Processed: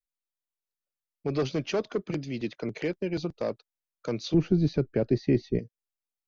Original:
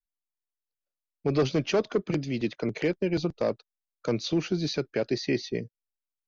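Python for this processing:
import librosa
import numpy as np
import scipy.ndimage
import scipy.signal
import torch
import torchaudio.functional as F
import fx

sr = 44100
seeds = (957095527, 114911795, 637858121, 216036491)

y = fx.tilt_eq(x, sr, slope=-4.0, at=(4.34, 5.59))
y = y * librosa.db_to_amplitude(-3.5)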